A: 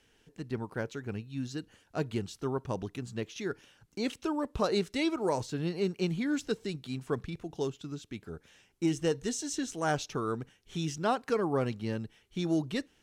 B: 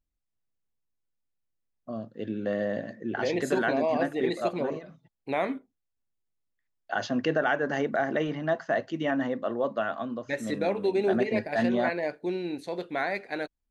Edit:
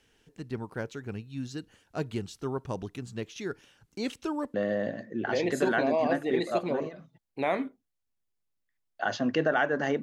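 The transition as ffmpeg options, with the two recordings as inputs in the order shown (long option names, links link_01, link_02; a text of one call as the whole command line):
ffmpeg -i cue0.wav -i cue1.wav -filter_complex "[0:a]apad=whole_dur=10.02,atrim=end=10.02,atrim=end=4.542[link_01];[1:a]atrim=start=2.438:end=7.92[link_02];[link_01][link_02]acrossfade=duration=0.004:curve1=hsin:curve2=hsin" out.wav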